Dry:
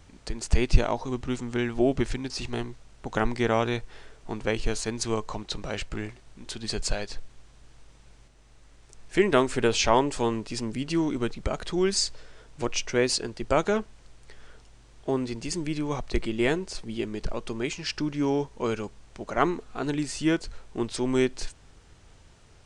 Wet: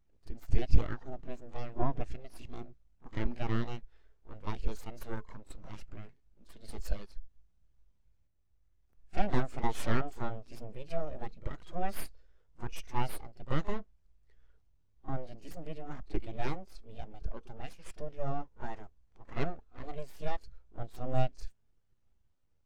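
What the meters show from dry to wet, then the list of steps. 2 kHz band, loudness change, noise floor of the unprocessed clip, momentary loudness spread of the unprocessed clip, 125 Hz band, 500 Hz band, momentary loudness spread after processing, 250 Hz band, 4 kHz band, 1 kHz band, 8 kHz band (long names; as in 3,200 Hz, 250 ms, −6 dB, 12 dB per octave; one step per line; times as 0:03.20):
−13.5 dB, −11.5 dB, −54 dBFS, 12 LU, −5.0 dB, −14.5 dB, 16 LU, −14.0 dB, −19.0 dB, −9.0 dB, −21.0 dB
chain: gain into a clipping stage and back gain 12 dB
echo ahead of the sound 39 ms −12.5 dB
full-wave rectification
every bin expanded away from the loudest bin 1.5 to 1
level +2 dB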